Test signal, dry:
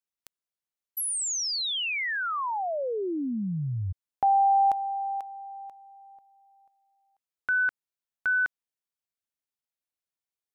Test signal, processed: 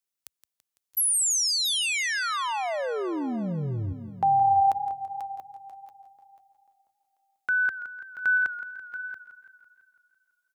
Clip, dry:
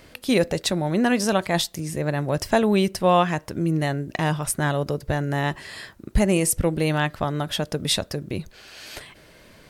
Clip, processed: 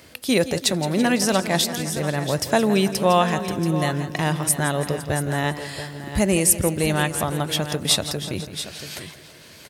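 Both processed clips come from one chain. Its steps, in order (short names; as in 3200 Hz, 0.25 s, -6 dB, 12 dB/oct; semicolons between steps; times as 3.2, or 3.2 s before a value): HPF 61 Hz 24 dB/oct; high shelf 4200 Hz +7 dB; echo 0.682 s -12 dB; warbling echo 0.167 s, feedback 63%, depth 75 cents, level -13.5 dB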